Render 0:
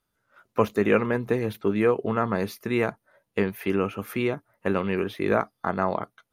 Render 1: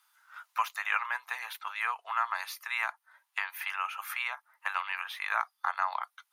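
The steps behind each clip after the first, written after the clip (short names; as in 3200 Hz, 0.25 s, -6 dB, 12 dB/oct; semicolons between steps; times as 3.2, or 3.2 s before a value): steep high-pass 850 Hz 48 dB/oct; three-band squash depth 40%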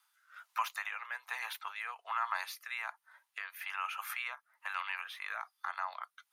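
limiter -21.5 dBFS, peak gain reduction 7.5 dB; rotary speaker horn 1.2 Hz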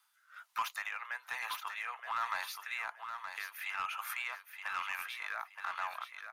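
in parallel at -7.5 dB: wavefolder -31.5 dBFS; on the sum: feedback echo 0.922 s, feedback 25%, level -7.5 dB; gain -2.5 dB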